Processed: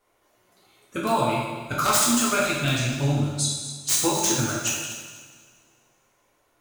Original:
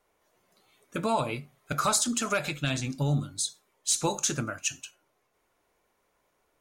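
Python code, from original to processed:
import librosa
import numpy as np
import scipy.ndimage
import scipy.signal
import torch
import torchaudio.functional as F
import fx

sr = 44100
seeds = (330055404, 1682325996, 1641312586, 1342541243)

y = (np.mod(10.0 ** (16.5 / 20.0) * x + 1.0, 2.0) - 1.0) / 10.0 ** (16.5 / 20.0)
y = fx.echo_feedback(y, sr, ms=244, feedback_pct=28, wet_db=-13)
y = fx.rev_double_slope(y, sr, seeds[0], early_s=0.99, late_s=2.5, knee_db=-17, drr_db=-4.5)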